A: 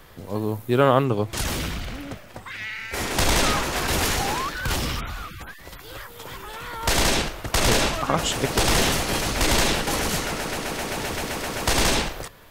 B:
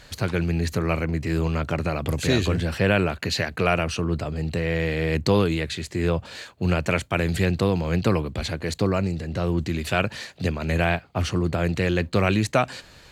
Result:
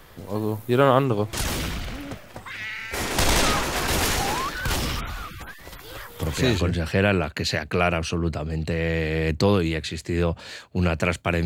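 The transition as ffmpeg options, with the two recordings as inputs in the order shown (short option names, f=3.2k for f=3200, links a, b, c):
-filter_complex "[0:a]apad=whole_dur=11.45,atrim=end=11.45,atrim=end=6.58,asetpts=PTS-STARTPTS[a];[1:a]atrim=start=2.06:end=7.31,asetpts=PTS-STARTPTS[b];[a][b]acrossfade=d=0.38:c1=log:c2=log"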